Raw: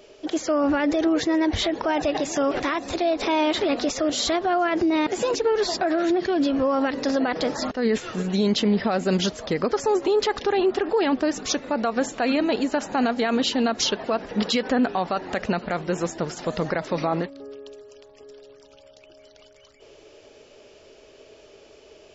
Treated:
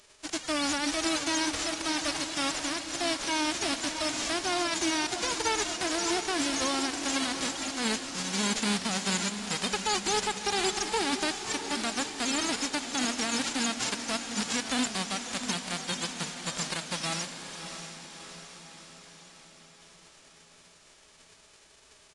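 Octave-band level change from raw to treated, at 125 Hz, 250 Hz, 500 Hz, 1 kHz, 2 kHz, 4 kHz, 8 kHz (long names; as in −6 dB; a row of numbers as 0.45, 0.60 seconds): −9.0 dB, −10.0 dB, −13.5 dB, −6.5 dB, −1.5 dB, 0.0 dB, can't be measured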